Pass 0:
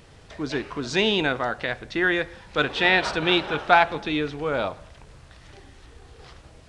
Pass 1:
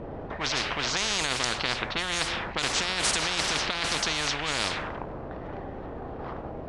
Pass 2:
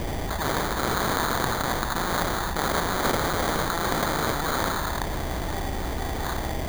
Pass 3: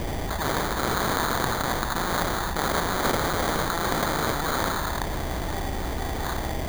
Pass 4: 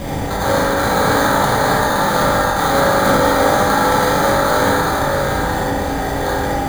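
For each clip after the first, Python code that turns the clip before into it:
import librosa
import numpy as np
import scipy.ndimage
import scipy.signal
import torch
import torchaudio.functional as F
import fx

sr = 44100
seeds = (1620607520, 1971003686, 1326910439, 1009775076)

y1 = fx.env_lowpass(x, sr, base_hz=350.0, full_db=-20.0)
y1 = fx.over_compress(y1, sr, threshold_db=-25.0, ratio=-1.0)
y1 = fx.spectral_comp(y1, sr, ratio=10.0)
y2 = fx.graphic_eq_10(y1, sr, hz=(125, 250, 500, 2000, 4000, 8000), db=(-7, -6, -11, -11, -4, 6))
y2 = fx.sample_hold(y2, sr, seeds[0], rate_hz=2700.0, jitter_pct=0)
y2 = fx.env_flatten(y2, sr, amount_pct=70)
y3 = y2
y4 = y3 + 10.0 ** (-5.5 / 20.0) * np.pad(y3, (int(644 * sr / 1000.0), 0))[:len(y3)]
y4 = fx.rev_fdn(y4, sr, rt60_s=1.6, lf_ratio=0.75, hf_ratio=0.35, size_ms=11.0, drr_db=-7.5)
y4 = y4 * librosa.db_to_amplitude(1.5)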